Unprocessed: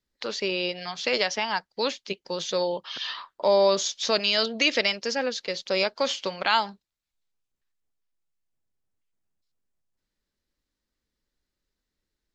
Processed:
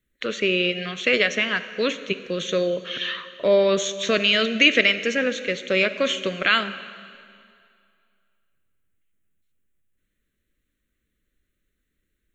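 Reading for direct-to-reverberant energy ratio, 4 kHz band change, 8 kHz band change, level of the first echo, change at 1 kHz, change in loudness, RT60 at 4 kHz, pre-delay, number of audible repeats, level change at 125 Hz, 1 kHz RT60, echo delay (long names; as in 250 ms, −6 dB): 11.5 dB, +3.0 dB, can't be measured, no echo audible, −3.0 dB, +4.5 dB, 2.1 s, 7 ms, no echo audible, can't be measured, 2.3 s, no echo audible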